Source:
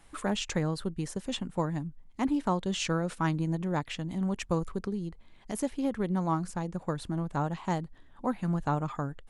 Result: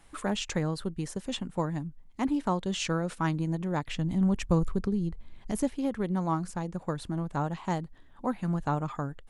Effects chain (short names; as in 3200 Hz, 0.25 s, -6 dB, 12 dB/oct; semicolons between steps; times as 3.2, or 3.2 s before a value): 3.87–5.7 low shelf 190 Hz +11 dB